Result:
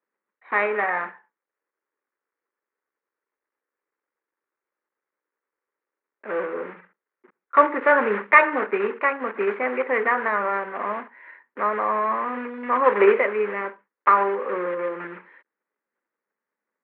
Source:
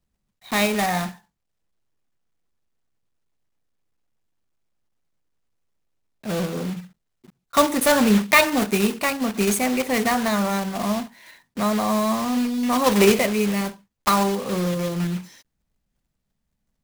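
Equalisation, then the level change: HPF 410 Hz 24 dB/oct; steep low-pass 2000 Hz 36 dB/oct; bell 700 Hz -13 dB 0.47 oct; +6.0 dB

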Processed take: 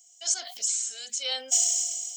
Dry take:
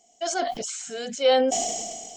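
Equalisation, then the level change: differentiator; high shelf 2400 Hz +8 dB; 0.0 dB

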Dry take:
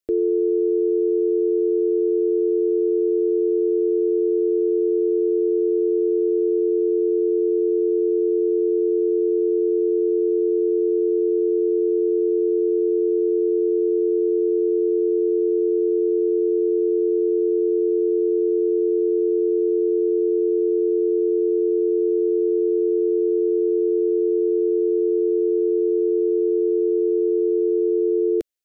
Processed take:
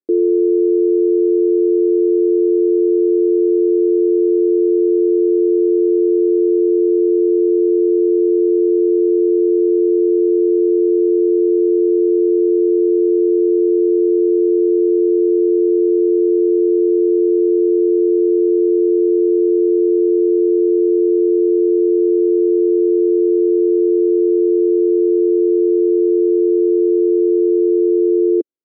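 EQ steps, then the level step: band-pass 330 Hz, Q 2.4; +8.0 dB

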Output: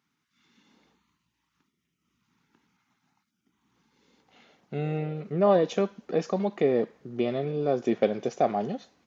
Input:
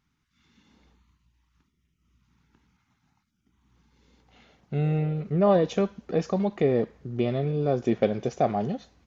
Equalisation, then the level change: HPF 210 Hz 12 dB/oct; 0.0 dB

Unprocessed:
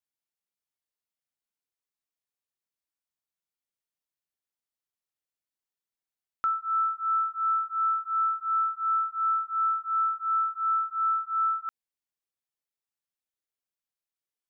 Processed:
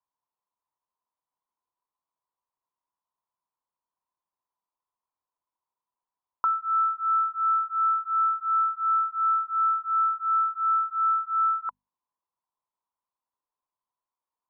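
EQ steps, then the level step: synth low-pass 1000 Hz, resonance Q 11; notches 50/100/150/200/250 Hz; 0.0 dB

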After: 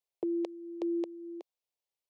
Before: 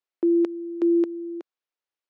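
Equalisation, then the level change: dynamic EQ 330 Hz, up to -6 dB, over -34 dBFS; fixed phaser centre 600 Hz, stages 4; 0.0 dB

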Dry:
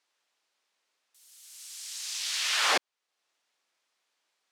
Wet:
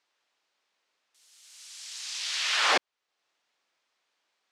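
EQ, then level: air absorption 62 m; +2.5 dB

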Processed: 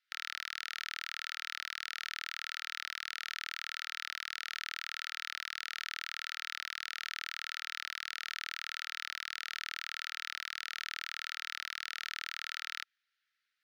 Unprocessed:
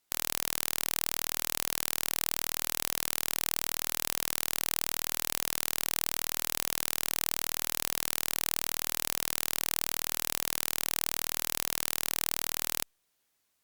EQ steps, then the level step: rippled Chebyshev high-pass 1300 Hz, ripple 3 dB; air absorption 290 m; +5.0 dB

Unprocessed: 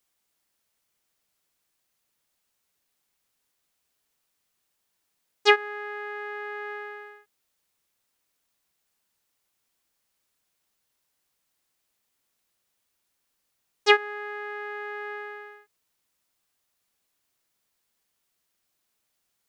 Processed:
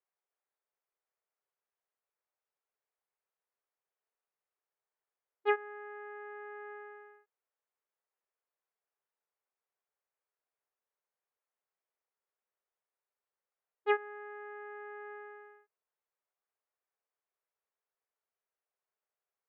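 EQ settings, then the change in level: Gaussian blur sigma 4.3 samples; brick-wall FIR high-pass 360 Hz; -8.5 dB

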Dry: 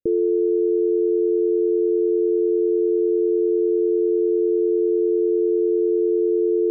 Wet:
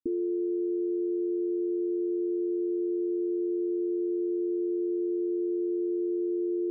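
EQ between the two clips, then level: vocal tract filter i; fixed phaser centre 560 Hz, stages 6; +3.0 dB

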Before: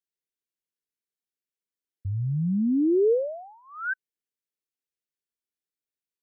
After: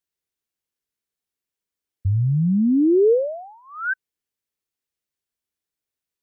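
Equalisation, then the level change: bell 69 Hz +7 dB 1.4 oct; +5.0 dB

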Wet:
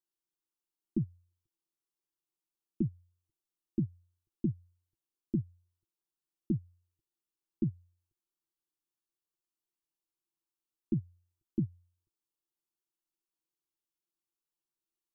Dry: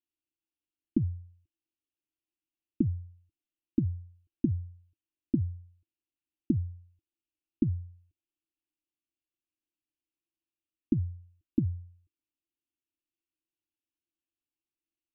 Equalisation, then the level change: bell 72 Hz -15 dB 0.43 oct; fixed phaser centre 410 Hz, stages 8; +1.0 dB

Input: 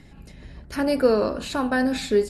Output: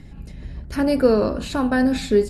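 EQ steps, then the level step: low shelf 250 Hz +9.5 dB; 0.0 dB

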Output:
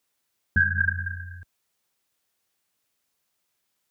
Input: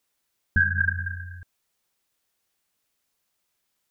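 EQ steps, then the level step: HPF 57 Hz; 0.0 dB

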